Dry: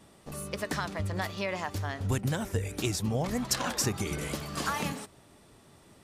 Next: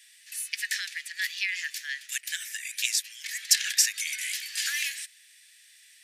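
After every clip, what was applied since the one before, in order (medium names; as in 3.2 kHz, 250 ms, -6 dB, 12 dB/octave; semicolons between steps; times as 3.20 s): Chebyshev high-pass 1.7 kHz, order 6; trim +9 dB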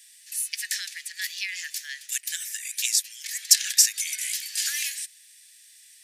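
tone controls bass +14 dB, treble +10 dB; trim -4 dB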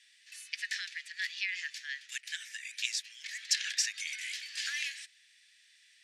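low-pass 3.4 kHz 12 dB/octave; trim -1.5 dB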